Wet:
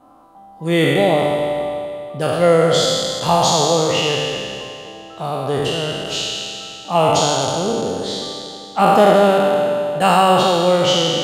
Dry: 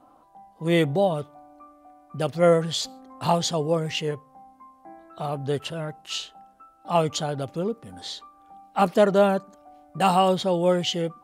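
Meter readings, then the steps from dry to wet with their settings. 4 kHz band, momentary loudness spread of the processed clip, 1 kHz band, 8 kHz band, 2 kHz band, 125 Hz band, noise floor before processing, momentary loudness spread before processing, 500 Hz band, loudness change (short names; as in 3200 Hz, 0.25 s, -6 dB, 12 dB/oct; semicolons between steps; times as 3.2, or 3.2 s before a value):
+11.5 dB, 15 LU, +9.5 dB, +12.0 dB, +11.0 dB, +5.5 dB, -57 dBFS, 16 LU, +8.0 dB, +8.0 dB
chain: spectral trails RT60 2.54 s; analogue delay 85 ms, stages 2048, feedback 73%, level -12.5 dB; gain +3.5 dB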